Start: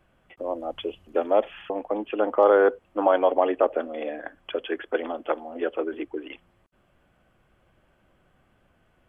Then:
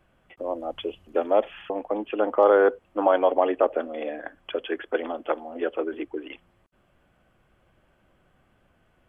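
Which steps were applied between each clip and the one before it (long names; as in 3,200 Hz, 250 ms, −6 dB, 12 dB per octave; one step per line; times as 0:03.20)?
no processing that can be heard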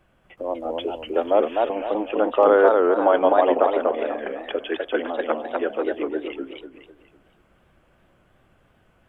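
feedback echo with a swinging delay time 249 ms, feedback 36%, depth 181 cents, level −3 dB
level +2 dB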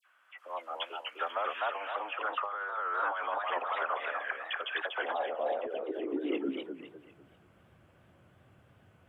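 high-pass filter sweep 1,300 Hz → 97 Hz, 0:04.58–0:07.29
compressor whose output falls as the input rises −26 dBFS, ratio −1
all-pass dispersion lows, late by 58 ms, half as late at 2,100 Hz
level −7 dB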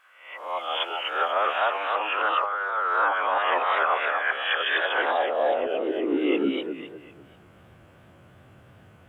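peak hold with a rise ahead of every peak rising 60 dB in 0.59 s
level +7.5 dB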